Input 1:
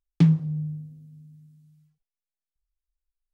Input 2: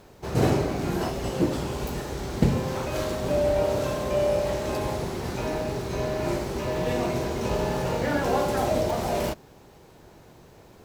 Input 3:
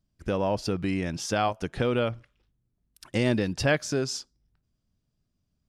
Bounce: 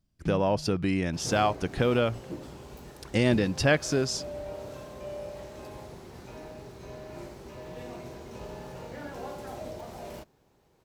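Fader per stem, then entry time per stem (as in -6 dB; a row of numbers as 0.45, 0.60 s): -17.0, -15.0, +1.0 dB; 0.05, 0.90, 0.00 s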